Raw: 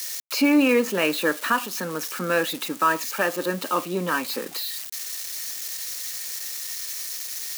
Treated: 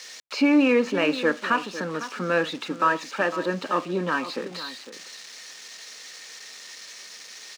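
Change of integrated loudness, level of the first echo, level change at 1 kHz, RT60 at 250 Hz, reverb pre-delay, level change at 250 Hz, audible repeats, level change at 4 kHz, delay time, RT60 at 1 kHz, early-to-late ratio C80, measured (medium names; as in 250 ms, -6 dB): +0.5 dB, -13.0 dB, -0.5 dB, no reverb, no reverb, 0.0 dB, 1, -3.5 dB, 504 ms, no reverb, no reverb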